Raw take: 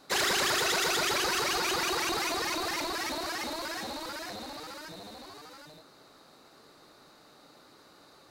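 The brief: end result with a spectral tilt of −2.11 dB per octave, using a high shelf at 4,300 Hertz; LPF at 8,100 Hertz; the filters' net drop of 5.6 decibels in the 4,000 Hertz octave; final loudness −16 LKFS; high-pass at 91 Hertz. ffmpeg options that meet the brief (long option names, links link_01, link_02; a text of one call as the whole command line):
ffmpeg -i in.wav -af "highpass=91,lowpass=8100,equalizer=frequency=4000:width_type=o:gain=-3,highshelf=frequency=4300:gain=-6.5,volume=16dB" out.wav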